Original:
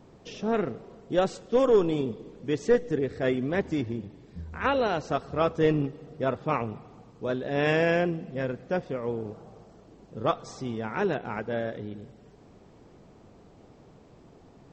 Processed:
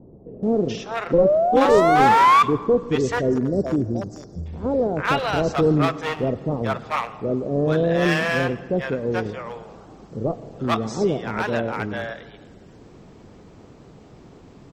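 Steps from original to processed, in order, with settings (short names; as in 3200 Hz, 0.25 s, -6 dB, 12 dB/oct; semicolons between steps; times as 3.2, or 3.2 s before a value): 1.13–2 painted sound rise 500–1200 Hz -18 dBFS; 2.84–4.03 elliptic band-stop 680–5100 Hz, stop band 40 dB; one-sided clip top -21.5 dBFS; bands offset in time lows, highs 0.43 s, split 660 Hz; on a send at -19 dB: reverb RT60 1.4 s, pre-delay 93 ms; on the sum: gain +8 dB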